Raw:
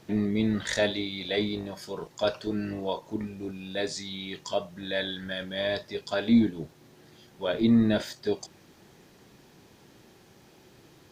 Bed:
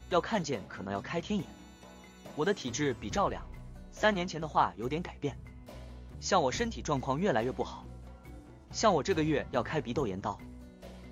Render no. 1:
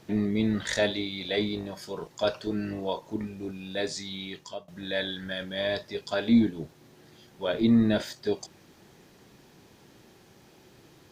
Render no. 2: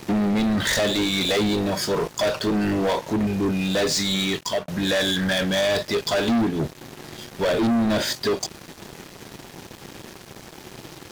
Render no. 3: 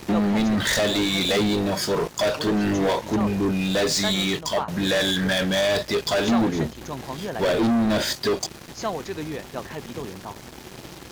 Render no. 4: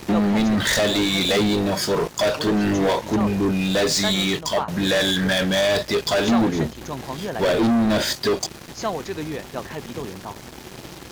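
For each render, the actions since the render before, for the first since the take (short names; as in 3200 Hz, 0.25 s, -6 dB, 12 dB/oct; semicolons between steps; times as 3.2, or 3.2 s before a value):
4.23–4.68 fade out, to -21 dB
compressor 2:1, threshold -32 dBFS, peak gain reduction 9 dB; sample leveller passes 5
add bed -2.5 dB
gain +2 dB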